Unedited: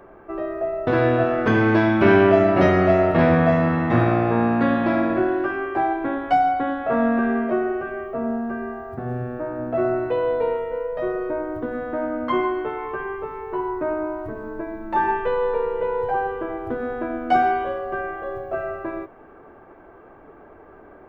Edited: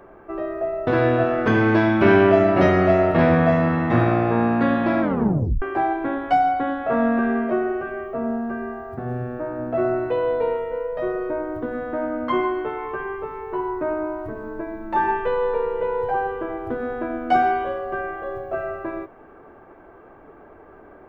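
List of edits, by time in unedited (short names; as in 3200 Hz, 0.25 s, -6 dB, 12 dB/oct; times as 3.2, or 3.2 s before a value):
5.01 tape stop 0.61 s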